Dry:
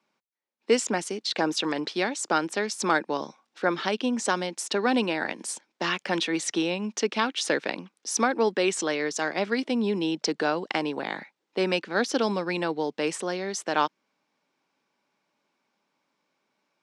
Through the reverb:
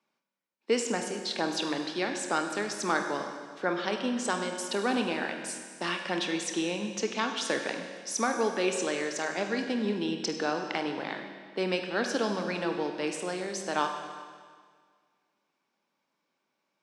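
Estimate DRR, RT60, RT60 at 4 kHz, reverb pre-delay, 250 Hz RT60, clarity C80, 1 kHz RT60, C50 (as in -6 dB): 4.5 dB, 1.8 s, 1.7 s, 25 ms, 1.8 s, 7.0 dB, 1.8 s, 6.0 dB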